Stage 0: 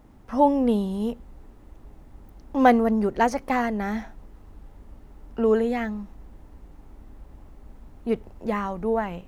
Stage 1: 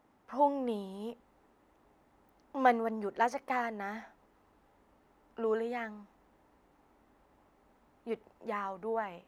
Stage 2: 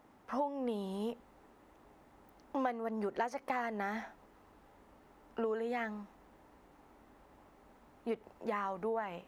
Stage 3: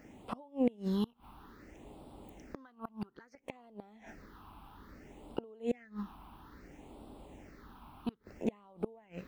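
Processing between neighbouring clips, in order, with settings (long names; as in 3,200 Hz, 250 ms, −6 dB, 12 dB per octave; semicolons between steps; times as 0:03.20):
high-pass filter 1,400 Hz 6 dB per octave; high-shelf EQ 2,100 Hz −12 dB
downward compressor 8 to 1, threshold −37 dBFS, peak gain reduction 17 dB; level +5 dB
gate with flip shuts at −29 dBFS, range −28 dB; all-pass phaser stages 6, 0.6 Hz, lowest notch 490–1,800 Hz; level +10.5 dB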